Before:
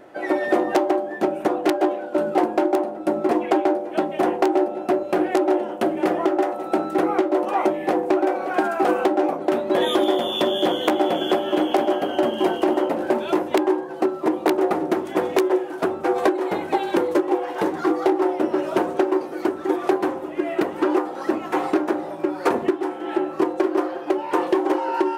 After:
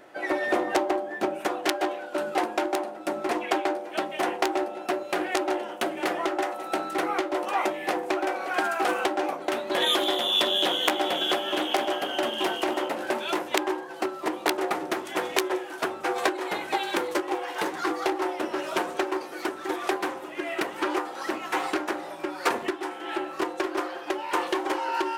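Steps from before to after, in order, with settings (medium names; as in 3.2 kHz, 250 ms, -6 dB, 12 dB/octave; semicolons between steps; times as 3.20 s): tilt shelf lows -5 dB, from 1.38 s lows -9 dB; loudspeaker Doppler distortion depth 0.12 ms; trim -3 dB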